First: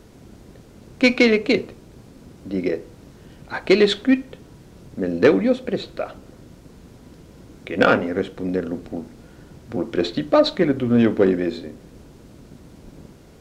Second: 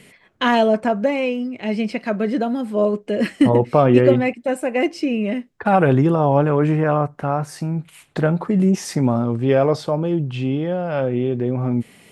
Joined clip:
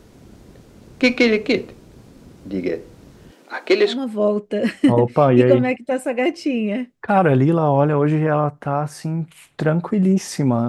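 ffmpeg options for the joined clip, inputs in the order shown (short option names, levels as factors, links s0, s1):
-filter_complex "[0:a]asettb=1/sr,asplit=3[s0][s1][s2];[s0]atrim=end=3.314[s3];[s1]atrim=start=3.31:end=4.01,asetpts=PTS-STARTPTS,afade=t=in:d=0.004:c=qsin,afade=t=out:st=0.696:d=0.004:c=qsin,highpass=f=280:w=0.5412,highpass=f=280:w=1.3066[s4];[s2]atrim=start=4.006[s5];[s3][s4]acrossfade=d=0.004:c1=hsin:c2=qsin[s6];[s6][s5]acrossfade=d=0.004:c1=qsin:c2=hsin,apad=whole_dur=10.68,atrim=end=10.68,atrim=end=4.01,asetpts=PTS-STARTPTS[s7];[1:a]atrim=start=2.42:end=9.25,asetpts=PTS-STARTPTS[s8];[s7][s8]acrossfade=d=0.16:c1=tri:c2=tri"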